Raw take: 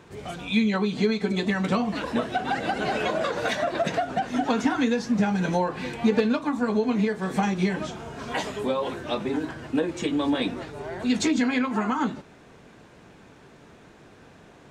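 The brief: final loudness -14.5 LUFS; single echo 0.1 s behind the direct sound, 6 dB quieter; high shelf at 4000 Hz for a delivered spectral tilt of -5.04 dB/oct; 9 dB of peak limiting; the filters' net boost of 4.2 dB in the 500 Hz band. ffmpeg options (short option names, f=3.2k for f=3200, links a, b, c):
-af "equalizer=f=500:t=o:g=5,highshelf=f=4k:g=7,alimiter=limit=-16dB:level=0:latency=1,aecho=1:1:100:0.501,volume=10.5dB"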